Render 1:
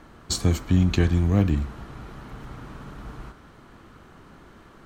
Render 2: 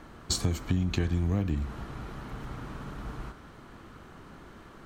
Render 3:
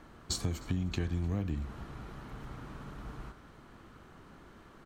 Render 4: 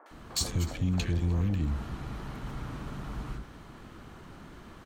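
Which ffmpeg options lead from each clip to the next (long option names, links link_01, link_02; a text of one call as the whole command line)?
ffmpeg -i in.wav -af "acompressor=threshold=-24dB:ratio=6" out.wav
ffmpeg -i in.wav -af "aecho=1:1:306|612|918:0.0668|0.0314|0.0148,volume=-5.5dB" out.wav
ffmpeg -i in.wav -filter_complex "[0:a]aeval=exprs='0.119*sin(PI/2*2.24*val(0)/0.119)':channel_layout=same,acrossover=split=450|1400[link_01][link_02][link_03];[link_03]adelay=60[link_04];[link_01]adelay=110[link_05];[link_05][link_02][link_04]amix=inputs=3:normalize=0,volume=-3.5dB" out.wav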